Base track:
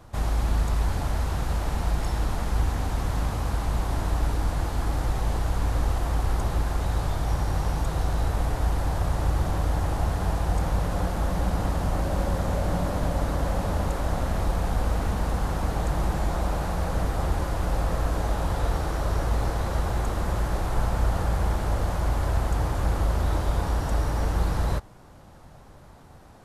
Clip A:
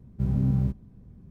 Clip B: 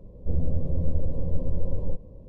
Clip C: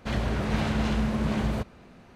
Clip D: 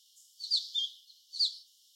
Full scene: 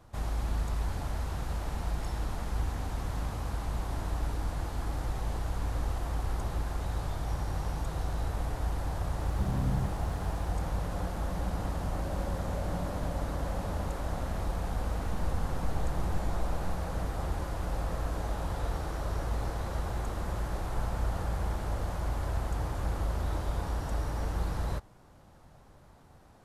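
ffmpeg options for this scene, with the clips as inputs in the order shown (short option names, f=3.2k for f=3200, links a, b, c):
-filter_complex "[0:a]volume=-7.5dB[a];[1:a]aeval=exprs='val(0)+0.5*0.015*sgn(val(0))':c=same,atrim=end=1.3,asetpts=PTS-STARTPTS,volume=-9dB,afade=t=in:d=0.004:c=hsin,afade=t=out:st=1.296:d=0.004:c=hsin,adelay=9190[b];[2:a]atrim=end=2.28,asetpts=PTS-STARTPTS,volume=-11dB,afade=t=in:d=0.004:c=hsin,afade=t=out:st=2.276:d=0.004:c=hsin,adelay=14800[c];[a][b][c]amix=inputs=3:normalize=0"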